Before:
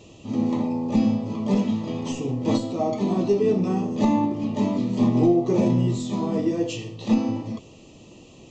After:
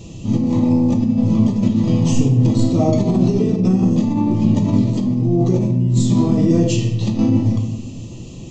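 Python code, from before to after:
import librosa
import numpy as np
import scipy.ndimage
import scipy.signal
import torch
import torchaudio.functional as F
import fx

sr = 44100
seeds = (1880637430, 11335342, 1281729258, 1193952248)

y = fx.bass_treble(x, sr, bass_db=15, treble_db=8)
y = fx.over_compress(y, sr, threshold_db=-17.0, ratio=-1.0)
y = fx.room_shoebox(y, sr, seeds[0], volume_m3=400.0, walls='mixed', distance_m=0.75)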